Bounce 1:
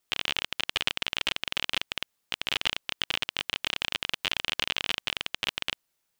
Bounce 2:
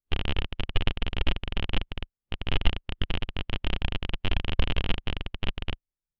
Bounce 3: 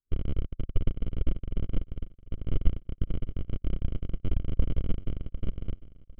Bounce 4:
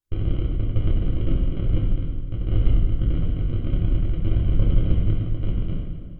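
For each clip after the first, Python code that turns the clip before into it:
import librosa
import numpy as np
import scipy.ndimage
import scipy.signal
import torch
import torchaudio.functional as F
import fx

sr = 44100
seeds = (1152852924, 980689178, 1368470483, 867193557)

y1 = fx.tilt_eq(x, sr, slope=-4.0)
y1 = fx.spectral_expand(y1, sr, expansion=1.5)
y1 = y1 * 10.0 ** (3.0 / 20.0)
y2 = scipy.signal.lfilter(np.full(50, 1.0 / 50), 1.0, y1)
y2 = fx.echo_feedback(y2, sr, ms=752, feedback_pct=34, wet_db=-18.5)
y3 = fx.rev_fdn(y2, sr, rt60_s=1.6, lf_ratio=1.3, hf_ratio=0.85, size_ms=55.0, drr_db=-4.5)
y3 = y3 * 10.0 ** (2.5 / 20.0)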